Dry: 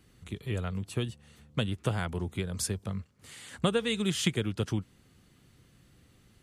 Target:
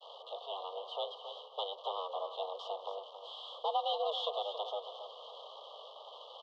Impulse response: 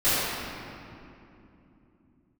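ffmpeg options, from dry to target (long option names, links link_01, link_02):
-filter_complex "[0:a]aeval=exprs='val(0)+0.5*0.0112*sgn(val(0))':channel_layout=same,aemphasis=mode=production:type=50fm,agate=range=-33dB:threshold=-35dB:ratio=3:detection=peak,aeval=exprs='(tanh(31.6*val(0)+0.8)-tanh(0.8))/31.6':channel_layout=same,acrusher=bits=9:dc=4:mix=0:aa=0.000001,crystalizer=i=4.5:c=0,asuperstop=centerf=1600:order=20:qfactor=0.9,asplit=2[link_01][link_02];[link_02]aecho=0:1:275|550|825:0.335|0.0938|0.0263[link_03];[link_01][link_03]amix=inputs=2:normalize=0,highpass=frequency=220:width_type=q:width=0.5412,highpass=frequency=220:width_type=q:width=1.307,lowpass=frequency=2700:width_type=q:width=0.5176,lowpass=frequency=2700:width_type=q:width=0.7071,lowpass=frequency=2700:width_type=q:width=1.932,afreqshift=290,volume=2.5dB"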